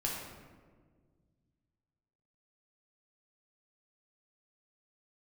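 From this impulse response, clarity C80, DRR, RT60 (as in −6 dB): 3.0 dB, −3.5 dB, 1.7 s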